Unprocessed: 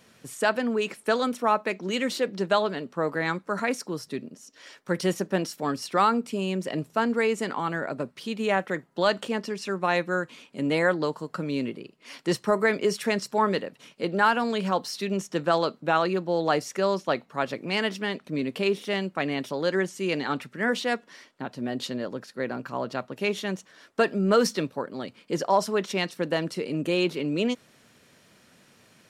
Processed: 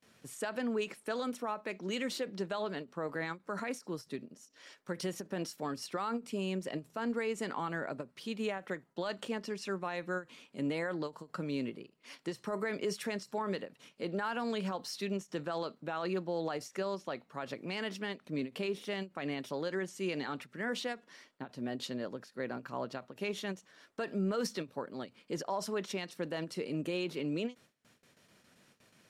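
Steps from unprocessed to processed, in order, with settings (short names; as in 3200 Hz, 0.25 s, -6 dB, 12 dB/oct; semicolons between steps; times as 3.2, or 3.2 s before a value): gate with hold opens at -47 dBFS; limiter -19 dBFS, peak gain reduction 9.5 dB; ending taper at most 300 dB/s; gain -7 dB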